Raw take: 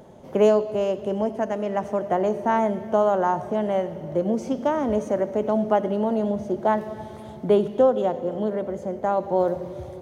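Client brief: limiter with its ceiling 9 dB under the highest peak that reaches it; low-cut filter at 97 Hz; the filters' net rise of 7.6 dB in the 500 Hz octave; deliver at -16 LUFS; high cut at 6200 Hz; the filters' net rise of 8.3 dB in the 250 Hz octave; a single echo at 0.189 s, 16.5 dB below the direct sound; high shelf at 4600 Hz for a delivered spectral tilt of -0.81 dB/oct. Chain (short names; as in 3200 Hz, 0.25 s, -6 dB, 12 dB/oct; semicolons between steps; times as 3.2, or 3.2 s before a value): HPF 97 Hz; LPF 6200 Hz; bell 250 Hz +9 dB; bell 500 Hz +7 dB; high shelf 4600 Hz +9 dB; limiter -8.5 dBFS; echo 0.189 s -16.5 dB; gain +3 dB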